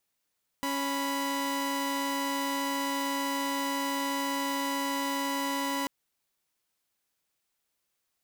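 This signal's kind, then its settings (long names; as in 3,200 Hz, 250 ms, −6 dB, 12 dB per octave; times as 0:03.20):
held notes C#4/B5 saw, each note −29 dBFS 5.24 s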